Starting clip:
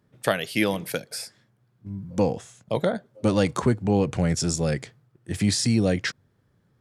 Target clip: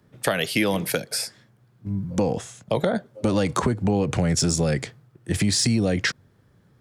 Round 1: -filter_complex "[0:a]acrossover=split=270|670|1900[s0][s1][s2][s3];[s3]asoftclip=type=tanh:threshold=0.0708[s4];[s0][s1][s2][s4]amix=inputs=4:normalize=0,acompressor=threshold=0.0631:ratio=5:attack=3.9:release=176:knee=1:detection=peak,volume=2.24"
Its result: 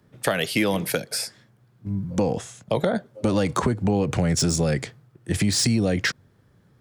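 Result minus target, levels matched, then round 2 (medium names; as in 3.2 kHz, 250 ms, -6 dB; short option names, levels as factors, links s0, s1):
saturation: distortion +14 dB
-filter_complex "[0:a]acrossover=split=270|670|1900[s0][s1][s2][s3];[s3]asoftclip=type=tanh:threshold=0.211[s4];[s0][s1][s2][s4]amix=inputs=4:normalize=0,acompressor=threshold=0.0631:ratio=5:attack=3.9:release=176:knee=1:detection=peak,volume=2.24"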